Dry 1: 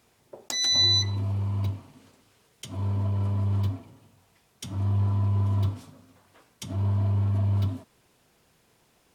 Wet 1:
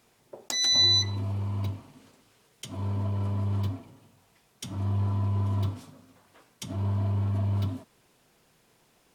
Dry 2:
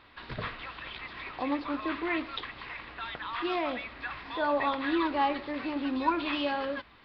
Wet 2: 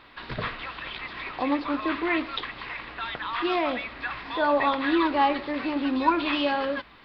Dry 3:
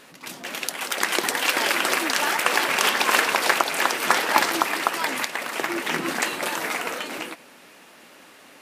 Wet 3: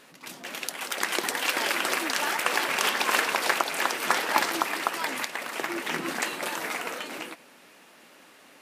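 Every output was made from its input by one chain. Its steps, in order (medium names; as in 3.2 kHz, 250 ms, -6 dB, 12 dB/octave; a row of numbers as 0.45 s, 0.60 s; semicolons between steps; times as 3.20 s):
peaking EQ 80 Hz -12 dB 0.35 oct; normalise loudness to -27 LUFS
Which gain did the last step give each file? 0.0 dB, +5.5 dB, -4.5 dB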